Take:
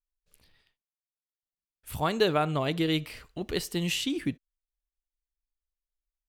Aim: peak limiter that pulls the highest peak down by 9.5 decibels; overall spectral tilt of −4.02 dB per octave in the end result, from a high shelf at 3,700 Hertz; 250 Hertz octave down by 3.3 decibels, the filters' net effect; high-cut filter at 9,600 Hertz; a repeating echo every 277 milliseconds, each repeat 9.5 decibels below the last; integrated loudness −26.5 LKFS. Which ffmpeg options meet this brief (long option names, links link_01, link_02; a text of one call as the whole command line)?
ffmpeg -i in.wav -af "lowpass=9600,equalizer=frequency=250:width_type=o:gain=-5,highshelf=frequency=3700:gain=4.5,alimiter=limit=-22dB:level=0:latency=1,aecho=1:1:277|554|831|1108:0.335|0.111|0.0365|0.012,volume=6.5dB" out.wav